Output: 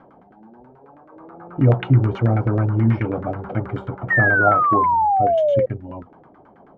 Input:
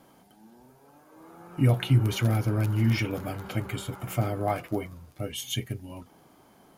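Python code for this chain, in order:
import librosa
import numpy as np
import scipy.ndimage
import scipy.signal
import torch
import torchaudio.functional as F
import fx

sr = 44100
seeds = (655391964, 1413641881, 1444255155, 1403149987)

y = fx.filter_lfo_lowpass(x, sr, shape='saw_down', hz=9.3, low_hz=430.0, high_hz=1700.0, q=2.1)
y = fx.spec_paint(y, sr, seeds[0], shape='fall', start_s=4.1, length_s=1.56, low_hz=510.0, high_hz=1900.0, level_db=-23.0)
y = F.gain(torch.from_numpy(y), 6.0).numpy()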